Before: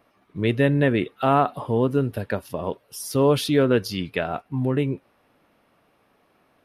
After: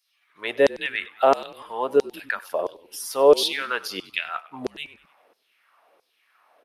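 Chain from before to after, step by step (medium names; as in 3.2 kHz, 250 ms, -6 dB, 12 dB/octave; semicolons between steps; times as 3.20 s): LFO high-pass saw down 1.5 Hz 410–5500 Hz; frequency-shifting echo 97 ms, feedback 47%, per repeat -52 Hz, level -19.5 dB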